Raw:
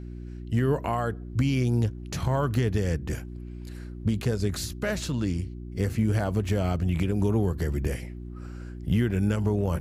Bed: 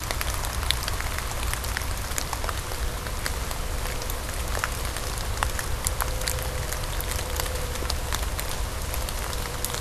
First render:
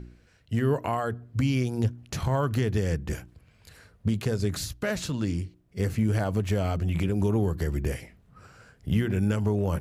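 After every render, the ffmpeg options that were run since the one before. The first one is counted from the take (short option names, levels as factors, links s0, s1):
-af "bandreject=f=60:t=h:w=4,bandreject=f=120:t=h:w=4,bandreject=f=180:t=h:w=4,bandreject=f=240:t=h:w=4,bandreject=f=300:t=h:w=4,bandreject=f=360:t=h:w=4"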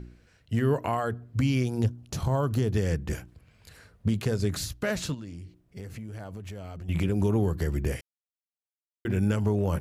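-filter_complex "[0:a]asettb=1/sr,asplit=3[s0][s1][s2];[s0]atrim=end=1.864[s3];[s1]atrim=start=1.86:end=2.74,asetpts=PTS-STARTPTS,afade=t=in:d=0.004:c=qsin,afade=t=out:st=0.876:d=0.004:c=qsin,equalizer=f=2000:t=o:w=1.1:g=-9[s4];[s2]atrim=start=2.736[s5];[s3][s4]acrossfade=d=0.004:c1=hsin:c2=qsin[s6];[s6][s5]acrossfade=d=0.004:c1=qsin:c2=hsin,asplit=3[s7][s8][s9];[s7]afade=t=out:st=5.13:d=0.02[s10];[s8]acompressor=threshold=0.0141:ratio=6:attack=3.2:release=140:knee=1:detection=peak,afade=t=in:st=5.13:d=0.02,afade=t=out:st=6.88:d=0.02[s11];[s9]afade=t=in:st=6.88:d=0.02[s12];[s10][s11][s12]amix=inputs=3:normalize=0,asplit=3[s13][s14][s15];[s13]atrim=end=8.01,asetpts=PTS-STARTPTS,afade=t=out:st=8.006:d=0.004:c=hsin[s16];[s14]atrim=start=8.01:end=9.05,asetpts=PTS-STARTPTS,volume=0[s17];[s15]atrim=start=9.05,asetpts=PTS-STARTPTS,afade=t=in:d=0.004:c=hsin[s18];[s16][s17][s18]concat=n=3:v=0:a=1"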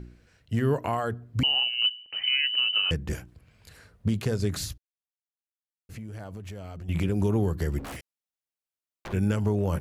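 -filter_complex "[0:a]asettb=1/sr,asplit=3[s0][s1][s2];[s0]atrim=end=1.434[s3];[s1]atrim=start=1.43:end=2.91,asetpts=PTS-STARTPTS,afade=t=in:d=0.004:c=qsin,afade=t=out:st=1.476:d=0.004:c=qsin,lowpass=f=2600:t=q:w=0.5098,lowpass=f=2600:t=q:w=0.6013,lowpass=f=2600:t=q:w=0.9,lowpass=f=2600:t=q:w=2.563,afreqshift=-3100[s4];[s2]atrim=start=2.906[s5];[s3][s4]acrossfade=d=0.004:c1=hsin:c2=qsin[s6];[s6][s5]acrossfade=d=0.004:c1=qsin:c2=hsin,asplit=3[s7][s8][s9];[s7]afade=t=out:st=7.78:d=0.02[s10];[s8]aeval=exprs='0.0224*(abs(mod(val(0)/0.0224+3,4)-2)-1)':c=same,afade=t=in:st=7.78:d=0.02,afade=t=out:st=9.12:d=0.02[s11];[s9]afade=t=in:st=9.12:d=0.02[s12];[s10][s11][s12]amix=inputs=3:normalize=0,asplit=3[s13][s14][s15];[s13]atrim=end=4.78,asetpts=PTS-STARTPTS,afade=t=out:st=4.776:d=0.004:c=hsin[s16];[s14]atrim=start=4.78:end=5.89,asetpts=PTS-STARTPTS,volume=0[s17];[s15]atrim=start=5.89,asetpts=PTS-STARTPTS,afade=t=in:d=0.004:c=hsin[s18];[s16][s17][s18]concat=n=3:v=0:a=1"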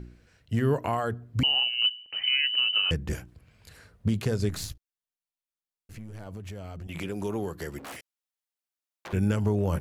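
-filter_complex "[0:a]asettb=1/sr,asplit=3[s0][s1][s2];[s0]atrim=end=4.494[s3];[s1]atrim=start=4.49:end=6.27,asetpts=PTS-STARTPTS,afade=t=in:d=0.004:c=qsin,afade=t=out:st=1.776:d=0.004:c=qsin,aeval=exprs='if(lt(val(0),0),0.447*val(0),val(0))':c=same[s4];[s2]atrim=start=6.266[s5];[s3][s4]acrossfade=d=0.004:c1=hsin:c2=qsin[s6];[s6][s5]acrossfade=d=0.004:c1=qsin:c2=hsin,asettb=1/sr,asplit=3[s7][s8][s9];[s7]atrim=end=6.874[s10];[s8]atrim=start=6.87:end=9.13,asetpts=PTS-STARTPTS,afade=t=in:d=0.004:c=qsin,afade=t=out:st=2.256:d=0.004:c=qsin,highpass=f=460:p=1[s11];[s9]atrim=start=9.126[s12];[s10][s11]acrossfade=d=0.004:c1=hsin:c2=qsin[s13];[s13][s12]acrossfade=d=0.004:c1=qsin:c2=hsin"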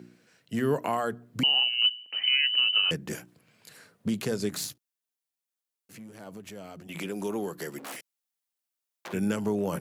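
-af "highpass=f=160:w=0.5412,highpass=f=160:w=1.3066,highshelf=f=5900:g=6"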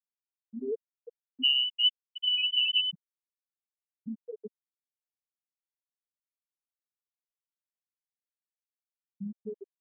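-af "afftfilt=real='re*gte(hypot(re,im),0.398)':imag='im*gte(hypot(re,im),0.398)':win_size=1024:overlap=0.75,lowshelf=f=370:g=-10.5"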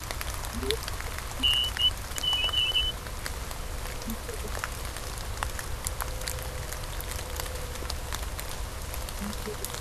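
-filter_complex "[1:a]volume=0.501[s0];[0:a][s0]amix=inputs=2:normalize=0"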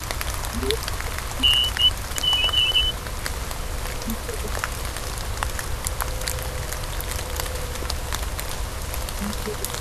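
-af "volume=2.11,alimiter=limit=0.708:level=0:latency=1"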